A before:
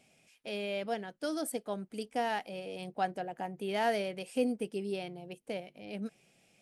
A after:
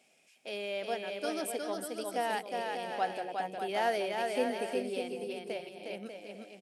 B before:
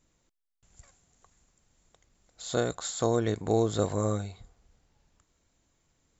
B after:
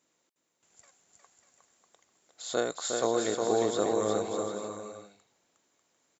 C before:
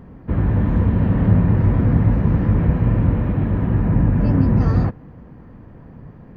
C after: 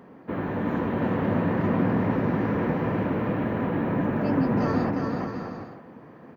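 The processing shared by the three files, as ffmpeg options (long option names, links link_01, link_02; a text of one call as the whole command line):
ffmpeg -i in.wav -filter_complex "[0:a]highpass=310,asplit=2[link_01][link_02];[link_02]aecho=0:1:360|594|746.1|845|909.2:0.631|0.398|0.251|0.158|0.1[link_03];[link_01][link_03]amix=inputs=2:normalize=0" out.wav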